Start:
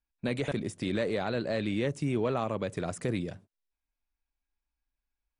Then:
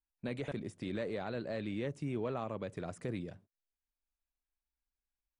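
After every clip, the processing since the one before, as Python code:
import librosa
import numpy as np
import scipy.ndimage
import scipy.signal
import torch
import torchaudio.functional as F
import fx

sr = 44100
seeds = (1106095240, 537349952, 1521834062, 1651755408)

y = fx.high_shelf(x, sr, hz=3900.0, db=-6.5)
y = y * 10.0 ** (-7.5 / 20.0)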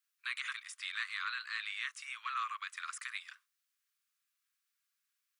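y = scipy.signal.sosfilt(scipy.signal.butter(16, 1100.0, 'highpass', fs=sr, output='sos'), x)
y = y * 10.0 ** (11.0 / 20.0)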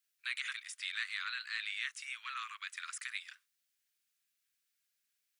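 y = fx.peak_eq(x, sr, hz=1100.0, db=-11.5, octaves=0.67)
y = y * 10.0 ** (2.0 / 20.0)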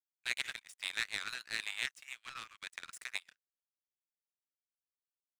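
y = fx.power_curve(x, sr, exponent=2.0)
y = y * 10.0 ** (8.5 / 20.0)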